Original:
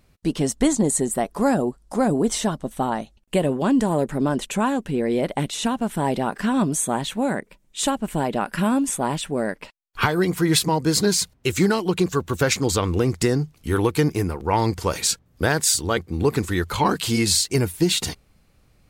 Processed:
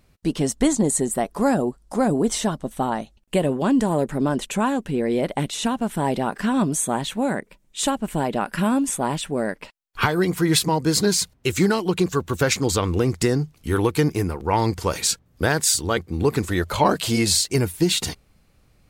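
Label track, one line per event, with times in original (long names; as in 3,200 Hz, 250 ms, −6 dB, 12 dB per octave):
16.460000	17.470000	parametric band 610 Hz +11 dB 0.38 octaves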